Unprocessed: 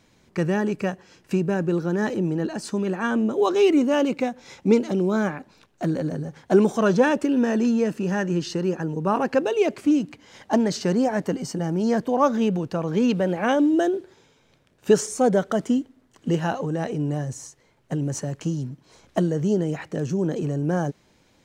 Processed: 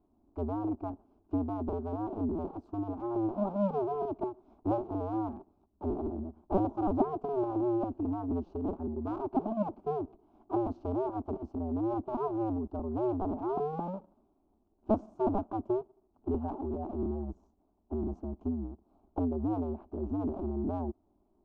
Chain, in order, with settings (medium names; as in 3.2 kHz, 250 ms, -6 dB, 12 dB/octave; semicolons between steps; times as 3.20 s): cycle switcher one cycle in 2, inverted; Chebyshev low-pass 520 Hz, order 2; static phaser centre 500 Hz, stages 6; trim -4.5 dB